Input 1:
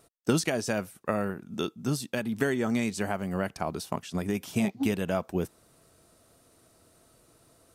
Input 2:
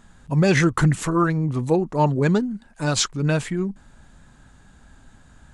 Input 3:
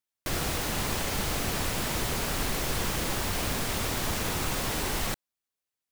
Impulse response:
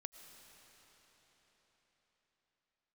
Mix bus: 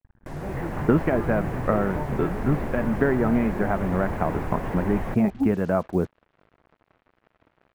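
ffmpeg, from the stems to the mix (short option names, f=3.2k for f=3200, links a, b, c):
-filter_complex "[0:a]adelay=600,volume=-3dB[a];[1:a]lowshelf=f=130:t=q:w=1.5:g=6.5,acompressor=threshold=-23dB:ratio=6,volume=-12dB,asplit=2[b][c];[c]volume=-17.5dB[d];[2:a]volume=-3dB,asplit=2[e][f];[f]volume=-18dB[g];[b][e]amix=inputs=2:normalize=0,equalizer=f=1.3k:w=3.3:g=-8.5,alimiter=level_in=2.5dB:limit=-24dB:level=0:latency=1:release=147,volume=-2.5dB,volume=0dB[h];[3:a]atrim=start_sample=2205[i];[d][g]amix=inputs=2:normalize=0[j];[j][i]afir=irnorm=-1:irlink=0[k];[a][h][k]amix=inputs=3:normalize=0,lowpass=f=1.7k:w=0.5412,lowpass=f=1.7k:w=1.3066,dynaudnorm=f=310:g=3:m=9dB,acrusher=bits=7:mix=0:aa=0.5"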